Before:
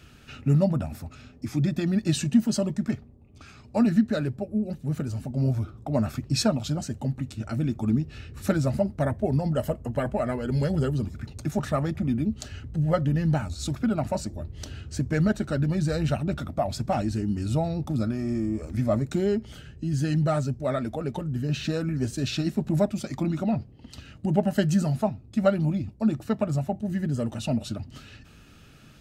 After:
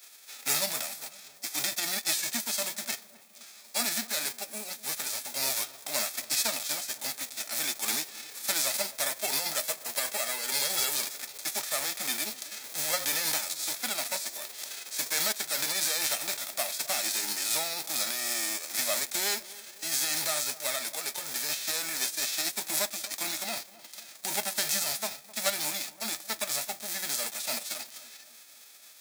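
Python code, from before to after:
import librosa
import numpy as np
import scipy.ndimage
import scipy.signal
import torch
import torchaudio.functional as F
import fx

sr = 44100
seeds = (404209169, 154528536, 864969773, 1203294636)

p1 = fx.envelope_flatten(x, sr, power=0.3)
p2 = scipy.signal.sosfilt(scipy.signal.butter(2, 820.0, 'highpass', fs=sr, output='sos'), p1)
p3 = fx.peak_eq(p2, sr, hz=1200.0, db=-9.0, octaves=1.4)
p4 = fx.notch(p3, sr, hz=2900.0, q=6.1)
p5 = 10.0 ** (-21.5 / 20.0) * (np.abs((p4 / 10.0 ** (-21.5 / 20.0) + 3.0) % 4.0 - 2.0) - 1.0)
p6 = p4 + F.gain(torch.from_numpy(p5), -5.0).numpy()
p7 = fx.echo_filtered(p6, sr, ms=259, feedback_pct=56, hz=1200.0, wet_db=-17.5)
y = F.gain(torch.from_numpy(p7), -3.0).numpy()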